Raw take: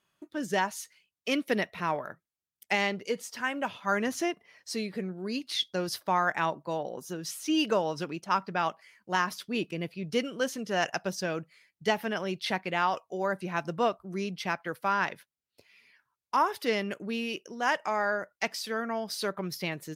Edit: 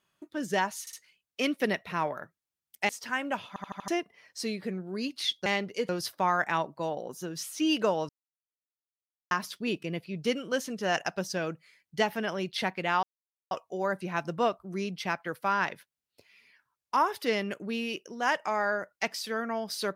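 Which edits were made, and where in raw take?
0.81 stutter 0.06 s, 3 plays
2.77–3.2 move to 5.77
3.79 stutter in place 0.08 s, 5 plays
7.97–9.19 mute
12.91 insert silence 0.48 s

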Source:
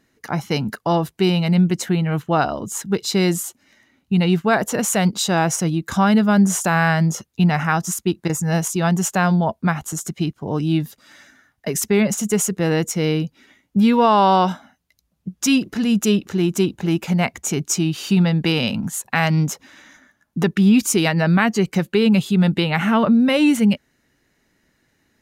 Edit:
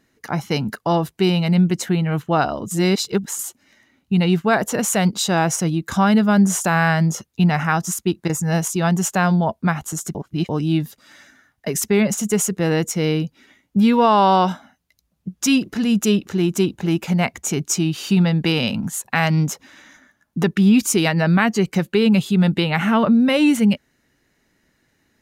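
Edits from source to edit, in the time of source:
2.71–3.39 reverse
10.15–10.49 reverse

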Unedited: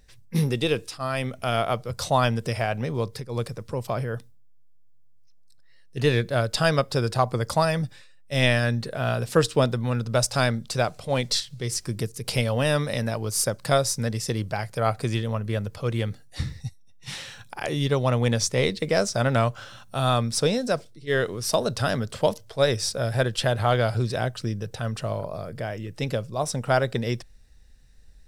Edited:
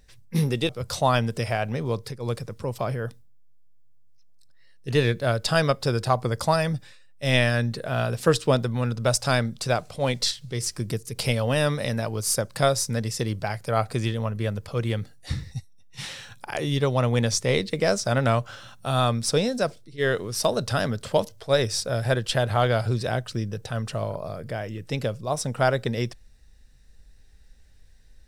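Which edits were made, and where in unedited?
0.69–1.78 cut

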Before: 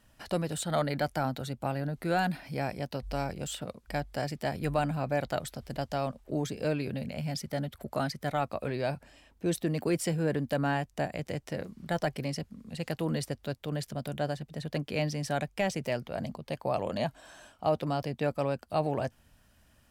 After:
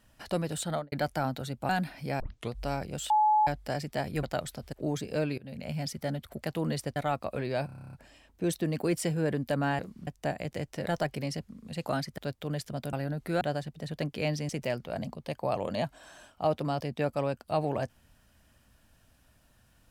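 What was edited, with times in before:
0.67–0.92 studio fade out
1.69–2.17 move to 14.15
2.68 tape start 0.33 s
3.58–3.95 bleep 853 Hz -20 dBFS
4.71–5.22 cut
5.72–6.22 cut
6.87–7.17 fade in, from -24 dB
7.92–8.25 swap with 12.87–13.4
8.95 stutter 0.03 s, 10 plays
11.6–11.88 move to 10.81
15.23–15.71 cut

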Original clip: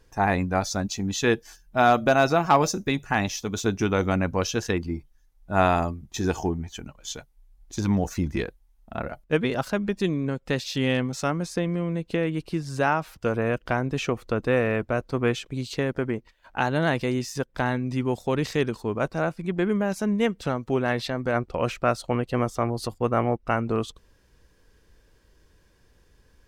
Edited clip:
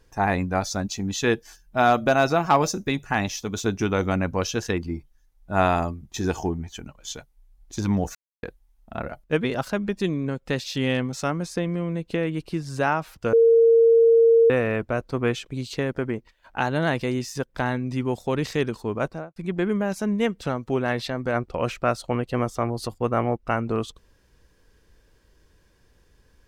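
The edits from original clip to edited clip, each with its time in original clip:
8.15–8.43 mute
13.33–14.5 bleep 459 Hz -12 dBFS
19.02–19.36 studio fade out

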